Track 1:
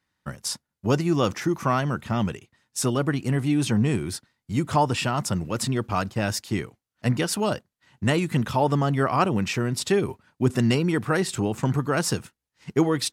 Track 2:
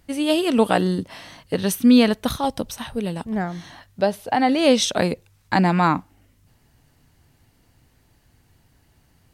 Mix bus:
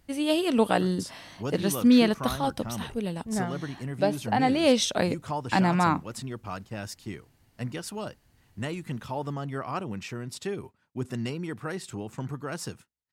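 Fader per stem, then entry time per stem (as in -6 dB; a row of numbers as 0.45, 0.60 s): -11.0, -5.0 dB; 0.55, 0.00 s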